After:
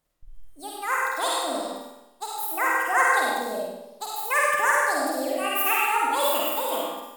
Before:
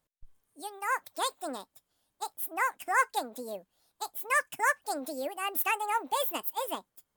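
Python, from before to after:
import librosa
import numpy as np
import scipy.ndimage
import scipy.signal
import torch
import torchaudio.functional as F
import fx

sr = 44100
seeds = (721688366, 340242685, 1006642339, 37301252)

y = fx.room_flutter(x, sr, wall_m=8.5, rt60_s=0.79)
y = fx.rev_freeverb(y, sr, rt60_s=0.81, hf_ratio=0.8, predelay_ms=25, drr_db=-2.0)
y = y * 10.0 ** (2.0 / 20.0)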